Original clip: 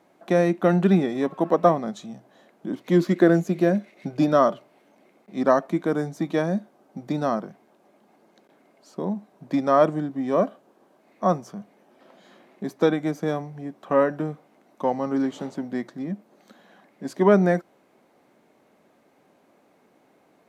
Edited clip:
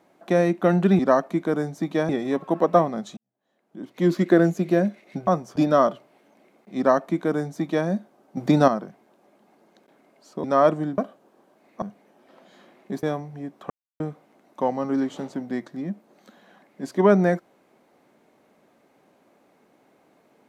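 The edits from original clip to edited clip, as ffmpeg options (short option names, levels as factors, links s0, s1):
-filter_complex "[0:a]asplit=14[s0][s1][s2][s3][s4][s5][s6][s7][s8][s9][s10][s11][s12][s13];[s0]atrim=end=0.992[s14];[s1]atrim=start=5.378:end=6.482[s15];[s2]atrim=start=0.988:end=2.07,asetpts=PTS-STARTPTS,afade=t=out:st=1.078:d=0.004:c=hsin[s16];[s3]atrim=start=2.07:end=4.172,asetpts=PTS-STARTPTS,afade=t=in:d=0.97:c=qua[s17];[s4]atrim=start=11.248:end=11.542[s18];[s5]atrim=start=4.168:end=6.982[s19];[s6]atrim=start=6.978:end=7.292,asetpts=PTS-STARTPTS,volume=2.66[s20];[s7]atrim=start=7.288:end=9.052[s21];[s8]atrim=start=9.598:end=10.142[s22];[s9]atrim=start=10.408:end=11.252[s23];[s10]atrim=start=11.538:end=12.752[s24];[s11]atrim=start=13.248:end=13.92,asetpts=PTS-STARTPTS,afade=t=out:st=0.668:d=0.004:c=hsin[s25];[s12]atrim=start=13.92:end=14.22,asetpts=PTS-STARTPTS,volume=0[s26];[s13]atrim=start=14.22,asetpts=PTS-STARTPTS,afade=t=in:d=0.004:c=hsin[s27];[s14][s15]acrossfade=d=0.004:c1=hsin:c2=hsin[s28];[s16][s17]concat=n=2:v=0:a=1[s29];[s28][s29]acrossfade=d=0.004:c1=hsin:c2=hsin[s30];[s30][s18]acrossfade=d=0.004:c1=hsin:c2=hsin[s31];[s31][s19]acrossfade=d=0.004:c1=hsin:c2=hsin[s32];[s32][s20]acrossfade=d=0.004:c1=hsin:c2=hsin[s33];[s33][s21]acrossfade=d=0.004:c1=hsin:c2=hsin[s34];[s34][s22]acrossfade=d=0.004:c1=hsin:c2=hsin[s35];[s35][s23]acrossfade=d=0.004:c1=hsin:c2=hsin[s36];[s36][s24]acrossfade=d=0.004:c1=hsin:c2=hsin[s37];[s25][s26][s27]concat=n=3:v=0:a=1[s38];[s37][s38]acrossfade=d=0.004:c1=hsin:c2=hsin"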